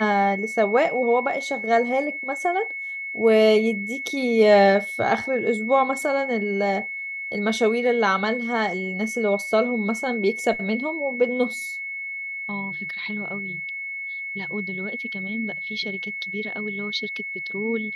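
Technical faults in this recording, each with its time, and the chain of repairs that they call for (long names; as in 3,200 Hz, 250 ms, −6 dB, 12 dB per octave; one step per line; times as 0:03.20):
whistle 2,200 Hz −29 dBFS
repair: notch filter 2,200 Hz, Q 30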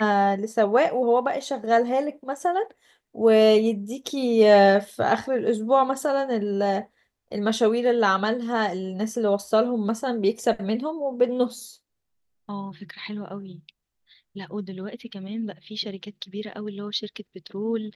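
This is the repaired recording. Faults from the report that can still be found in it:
none of them is left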